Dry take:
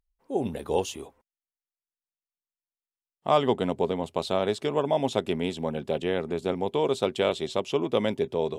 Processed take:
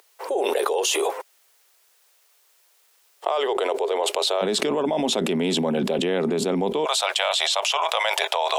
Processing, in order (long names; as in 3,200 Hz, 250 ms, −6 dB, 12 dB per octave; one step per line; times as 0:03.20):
Butterworth high-pass 390 Hz 48 dB per octave, from 0:04.41 170 Hz, from 0:06.84 640 Hz
envelope flattener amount 100%
level −4.5 dB